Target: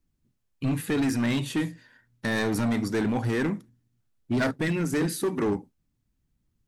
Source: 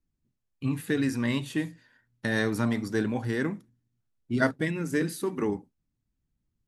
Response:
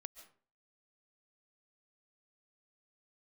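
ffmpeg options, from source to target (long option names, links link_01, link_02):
-filter_complex "[0:a]asplit=2[link_01][link_02];[link_02]alimiter=limit=-21.5dB:level=0:latency=1:release=28,volume=-1.5dB[link_03];[link_01][link_03]amix=inputs=2:normalize=0,asoftclip=type=hard:threshold=-21dB"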